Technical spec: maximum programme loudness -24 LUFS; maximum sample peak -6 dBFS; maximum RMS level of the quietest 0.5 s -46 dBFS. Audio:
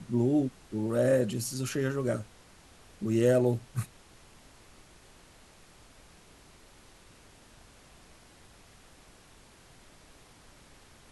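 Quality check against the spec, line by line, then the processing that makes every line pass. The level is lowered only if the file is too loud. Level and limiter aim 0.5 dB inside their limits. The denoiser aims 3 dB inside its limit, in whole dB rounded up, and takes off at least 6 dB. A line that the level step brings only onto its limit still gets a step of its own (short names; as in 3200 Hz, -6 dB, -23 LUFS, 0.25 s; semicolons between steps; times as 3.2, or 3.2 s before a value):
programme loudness -29.0 LUFS: OK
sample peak -13.0 dBFS: OK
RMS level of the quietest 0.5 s -56 dBFS: OK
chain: none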